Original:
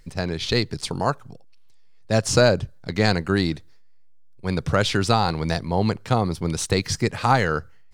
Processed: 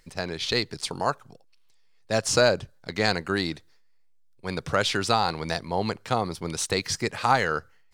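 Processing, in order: bass shelf 270 Hz -11 dB; trim -1 dB

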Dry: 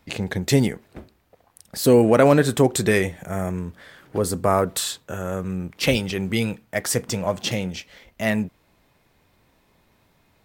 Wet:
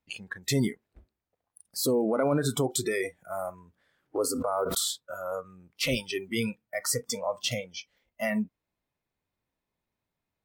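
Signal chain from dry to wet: peak limiter -14 dBFS, peak gain reduction 9.5 dB; spectral noise reduction 22 dB; 4.24–4.90 s: swell ahead of each attack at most 24 dB/s; trim -2.5 dB

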